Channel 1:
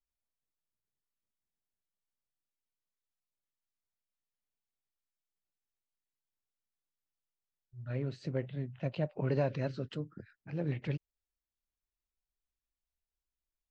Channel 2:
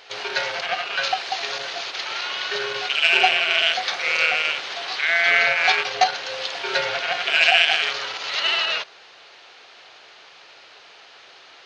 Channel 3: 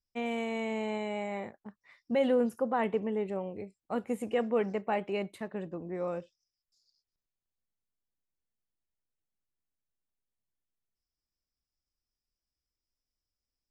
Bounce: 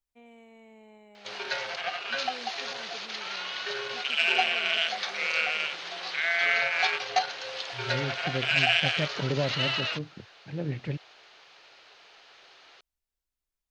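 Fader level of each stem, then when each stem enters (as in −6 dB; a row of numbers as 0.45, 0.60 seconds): +2.5, −7.5, −19.5 decibels; 0.00, 1.15, 0.00 seconds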